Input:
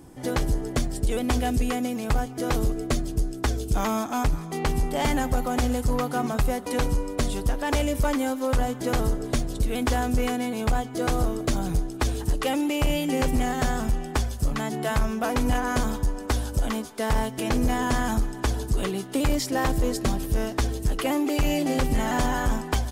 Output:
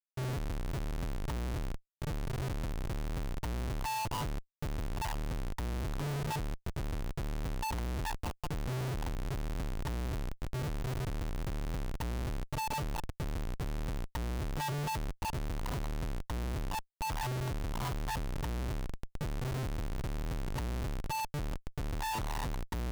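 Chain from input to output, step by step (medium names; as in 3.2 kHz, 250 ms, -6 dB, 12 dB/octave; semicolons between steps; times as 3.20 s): cascade formant filter u; FFT band-reject 150–870 Hz; Schmitt trigger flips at -54 dBFS; trim +7.5 dB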